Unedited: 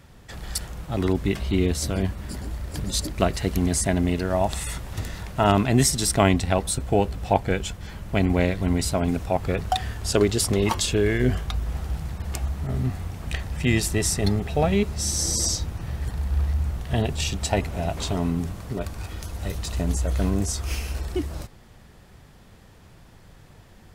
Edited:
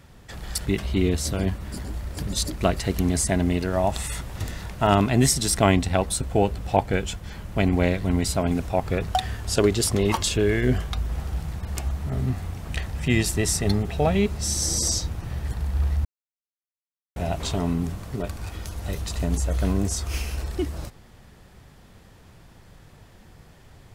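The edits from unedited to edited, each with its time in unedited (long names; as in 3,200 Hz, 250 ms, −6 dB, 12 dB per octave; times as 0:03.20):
0:00.66–0:01.23: remove
0:16.62–0:17.73: silence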